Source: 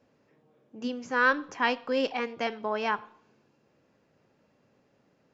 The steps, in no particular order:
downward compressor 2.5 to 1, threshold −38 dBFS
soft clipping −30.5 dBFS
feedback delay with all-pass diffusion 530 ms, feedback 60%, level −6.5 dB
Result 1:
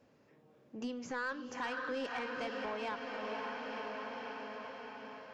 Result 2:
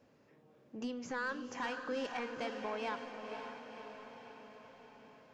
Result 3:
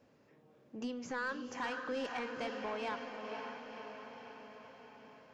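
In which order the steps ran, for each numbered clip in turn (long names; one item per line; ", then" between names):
feedback delay with all-pass diffusion, then downward compressor, then soft clipping
downward compressor, then soft clipping, then feedback delay with all-pass diffusion
downward compressor, then feedback delay with all-pass diffusion, then soft clipping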